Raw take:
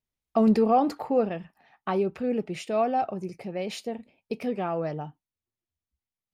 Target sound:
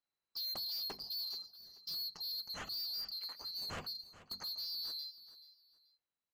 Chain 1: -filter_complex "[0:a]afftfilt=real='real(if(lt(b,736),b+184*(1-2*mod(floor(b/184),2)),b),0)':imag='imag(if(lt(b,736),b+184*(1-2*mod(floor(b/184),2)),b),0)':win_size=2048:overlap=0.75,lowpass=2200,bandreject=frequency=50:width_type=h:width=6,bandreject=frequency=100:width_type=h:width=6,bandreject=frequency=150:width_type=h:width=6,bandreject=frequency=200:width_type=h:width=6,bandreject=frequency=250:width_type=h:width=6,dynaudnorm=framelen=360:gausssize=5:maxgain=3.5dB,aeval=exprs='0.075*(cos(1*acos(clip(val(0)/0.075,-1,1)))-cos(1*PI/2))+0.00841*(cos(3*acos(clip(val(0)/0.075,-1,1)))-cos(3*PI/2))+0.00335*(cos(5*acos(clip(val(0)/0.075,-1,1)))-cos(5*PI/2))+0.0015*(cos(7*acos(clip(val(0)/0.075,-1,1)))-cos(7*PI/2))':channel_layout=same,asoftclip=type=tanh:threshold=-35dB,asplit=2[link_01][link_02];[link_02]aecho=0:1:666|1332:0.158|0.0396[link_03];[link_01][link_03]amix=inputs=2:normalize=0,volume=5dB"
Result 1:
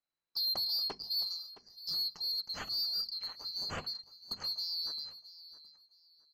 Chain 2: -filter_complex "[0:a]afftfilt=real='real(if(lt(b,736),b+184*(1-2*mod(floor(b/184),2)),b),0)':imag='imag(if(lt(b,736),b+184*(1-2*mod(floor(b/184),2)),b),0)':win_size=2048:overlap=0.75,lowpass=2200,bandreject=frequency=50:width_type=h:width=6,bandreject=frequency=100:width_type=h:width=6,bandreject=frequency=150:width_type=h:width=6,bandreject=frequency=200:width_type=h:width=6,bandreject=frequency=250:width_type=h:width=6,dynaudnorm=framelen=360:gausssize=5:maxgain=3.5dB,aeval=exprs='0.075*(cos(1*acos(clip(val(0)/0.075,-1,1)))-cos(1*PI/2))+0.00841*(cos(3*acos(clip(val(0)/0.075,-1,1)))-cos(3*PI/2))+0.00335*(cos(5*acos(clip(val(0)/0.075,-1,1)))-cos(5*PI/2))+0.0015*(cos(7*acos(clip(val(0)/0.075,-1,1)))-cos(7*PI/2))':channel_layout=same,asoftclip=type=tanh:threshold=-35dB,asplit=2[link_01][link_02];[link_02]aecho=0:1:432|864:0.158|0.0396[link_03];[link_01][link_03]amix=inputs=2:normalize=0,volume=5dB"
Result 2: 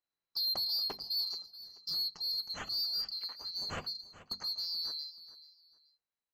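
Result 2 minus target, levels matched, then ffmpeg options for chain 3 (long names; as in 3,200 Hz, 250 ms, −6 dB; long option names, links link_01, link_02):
soft clipping: distortion −6 dB
-filter_complex "[0:a]afftfilt=real='real(if(lt(b,736),b+184*(1-2*mod(floor(b/184),2)),b),0)':imag='imag(if(lt(b,736),b+184*(1-2*mod(floor(b/184),2)),b),0)':win_size=2048:overlap=0.75,lowpass=2200,bandreject=frequency=50:width_type=h:width=6,bandreject=frequency=100:width_type=h:width=6,bandreject=frequency=150:width_type=h:width=6,bandreject=frequency=200:width_type=h:width=6,bandreject=frequency=250:width_type=h:width=6,dynaudnorm=framelen=360:gausssize=5:maxgain=3.5dB,aeval=exprs='0.075*(cos(1*acos(clip(val(0)/0.075,-1,1)))-cos(1*PI/2))+0.00841*(cos(3*acos(clip(val(0)/0.075,-1,1)))-cos(3*PI/2))+0.00335*(cos(5*acos(clip(val(0)/0.075,-1,1)))-cos(5*PI/2))+0.0015*(cos(7*acos(clip(val(0)/0.075,-1,1)))-cos(7*PI/2))':channel_layout=same,asoftclip=type=tanh:threshold=-44dB,asplit=2[link_01][link_02];[link_02]aecho=0:1:432|864:0.158|0.0396[link_03];[link_01][link_03]amix=inputs=2:normalize=0,volume=5dB"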